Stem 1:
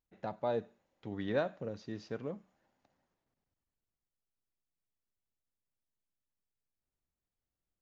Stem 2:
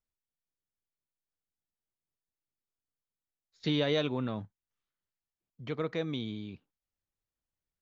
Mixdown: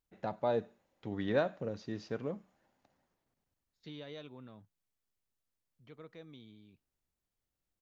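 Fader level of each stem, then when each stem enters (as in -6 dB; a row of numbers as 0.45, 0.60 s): +2.0, -18.0 dB; 0.00, 0.20 s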